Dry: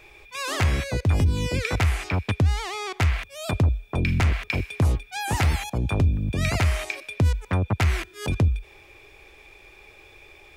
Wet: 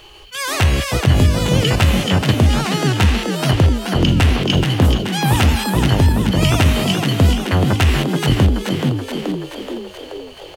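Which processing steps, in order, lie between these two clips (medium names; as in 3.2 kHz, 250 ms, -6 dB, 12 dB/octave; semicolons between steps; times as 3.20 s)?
frequency-shifting echo 428 ms, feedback 60%, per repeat +52 Hz, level -5.5 dB; formant shift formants +4 st; trim +7 dB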